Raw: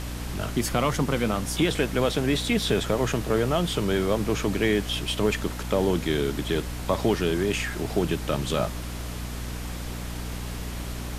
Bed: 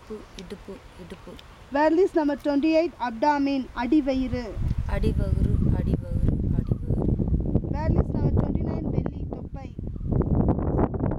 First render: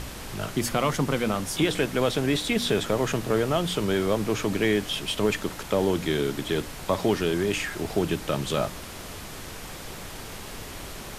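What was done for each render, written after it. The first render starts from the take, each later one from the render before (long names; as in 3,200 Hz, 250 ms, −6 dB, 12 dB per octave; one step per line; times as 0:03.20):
hum removal 60 Hz, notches 5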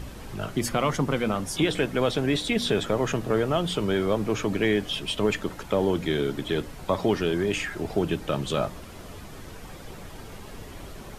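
broadband denoise 9 dB, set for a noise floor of −39 dBFS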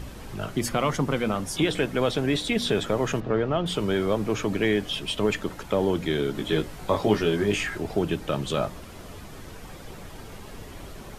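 0:03.20–0:03.66: high-frequency loss of the air 210 metres
0:06.33–0:07.78: double-tracking delay 19 ms −3 dB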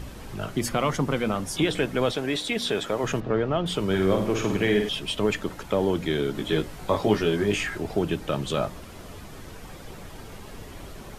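0:02.12–0:03.04: low-shelf EQ 190 Hz −11.5 dB
0:03.85–0:04.89: flutter between parallel walls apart 9 metres, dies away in 0.58 s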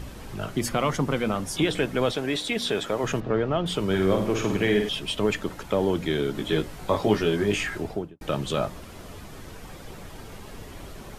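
0:07.79–0:08.21: fade out and dull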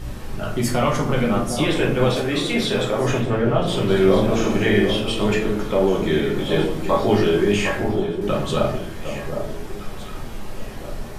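delay that swaps between a low-pass and a high-pass 758 ms, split 1,100 Hz, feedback 51%, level −7 dB
rectangular room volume 59 cubic metres, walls mixed, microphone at 0.91 metres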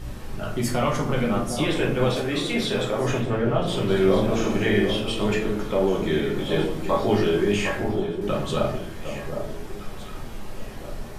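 level −3.5 dB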